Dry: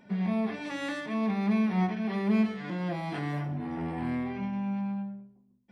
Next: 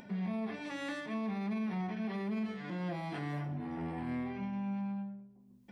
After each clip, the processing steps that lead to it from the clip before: upward compressor, threshold -40 dBFS; peak limiter -24.5 dBFS, peak gain reduction 8 dB; trim -5 dB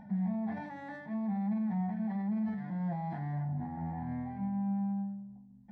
FFT filter 210 Hz 0 dB, 390 Hz -22 dB, 830 Hz +1 dB, 1.2 kHz -18 dB, 1.8 kHz -8 dB, 2.7 kHz -28 dB, 3.9 kHz -21 dB, 8.6 kHz -28 dB; decay stretcher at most 49 dB/s; trim +4 dB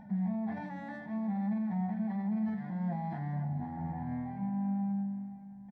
feedback delay 520 ms, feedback 41%, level -14 dB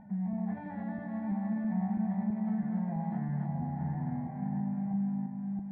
backward echo that repeats 329 ms, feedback 64%, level -3 dB; distance through air 480 m; trim -1 dB

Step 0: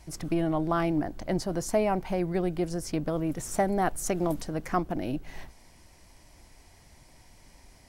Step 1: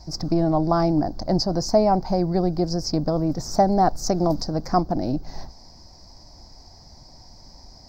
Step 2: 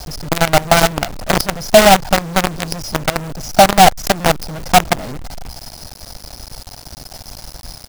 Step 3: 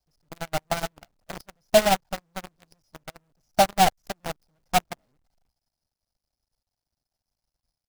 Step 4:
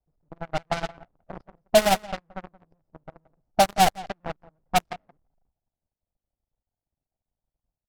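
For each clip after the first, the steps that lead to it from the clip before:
FFT filter 230 Hz 0 dB, 430 Hz -4 dB, 770 Hz +2 dB, 3 kHz -21 dB, 4.9 kHz +11 dB, 9.8 kHz -27 dB, 15 kHz -8 dB; trim +8 dB
comb 1.4 ms, depth 81%; companded quantiser 2-bit; trim -1 dB
upward expansion 2.5:1, over -32 dBFS; trim -8 dB
echo from a far wall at 30 m, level -19 dB; level-controlled noise filter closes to 780 Hz, open at -17.5 dBFS

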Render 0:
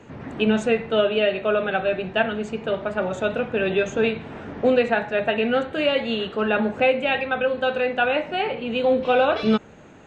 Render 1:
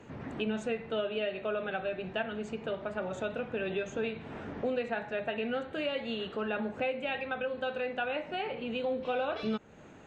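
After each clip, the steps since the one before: compression 2:1, threshold -30 dBFS, peak gain reduction 9 dB; trim -5.5 dB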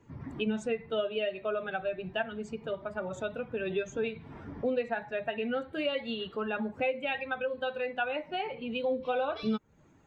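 expander on every frequency bin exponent 1.5; trim +4 dB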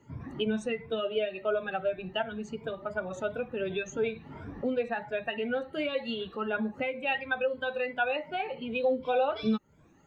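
drifting ripple filter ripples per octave 1.7, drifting +2.8 Hz, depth 12 dB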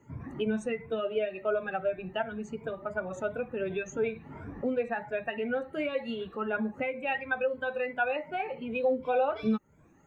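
high-order bell 4 kHz -8.5 dB 1.1 oct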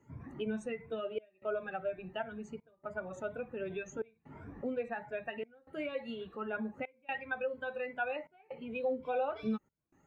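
trance gate "xxxxxxxxxx.." 127 bpm -24 dB; trim -6.5 dB

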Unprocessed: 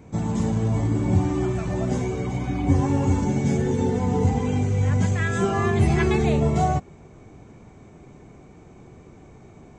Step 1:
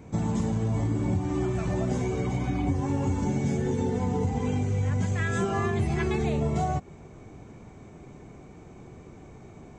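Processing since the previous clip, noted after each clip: compression, threshold -23 dBFS, peak gain reduction 10 dB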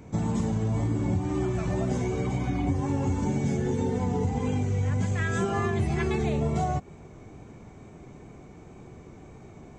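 wow and flutter 24 cents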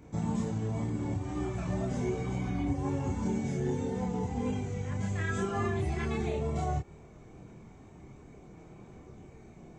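chorus voices 4, 0.42 Hz, delay 28 ms, depth 3.2 ms; trim -2 dB

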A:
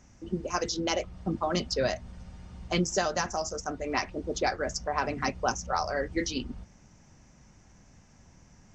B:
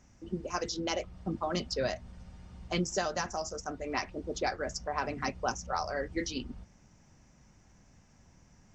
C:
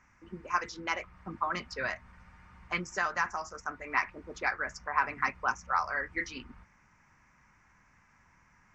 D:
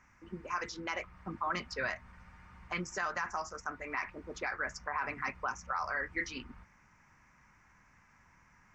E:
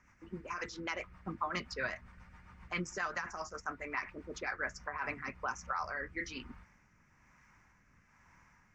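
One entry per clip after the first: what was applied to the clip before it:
band-stop 6.3 kHz, Q 29; trim -4 dB
high-order bell 1.5 kHz +16 dB; trim -8 dB
peak limiter -24 dBFS, peak gain reduction 11 dB
rotary cabinet horn 7.5 Hz, later 1.1 Hz, at 4.43 s; trim +1 dB

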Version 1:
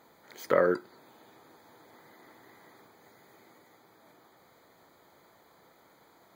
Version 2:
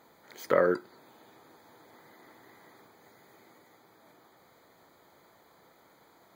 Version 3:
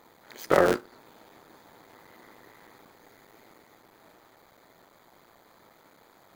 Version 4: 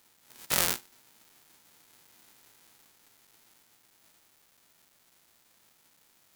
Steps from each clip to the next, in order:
no audible change
cycle switcher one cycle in 3, muted; trim +4.5 dB
formants flattened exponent 0.1; trim -6.5 dB

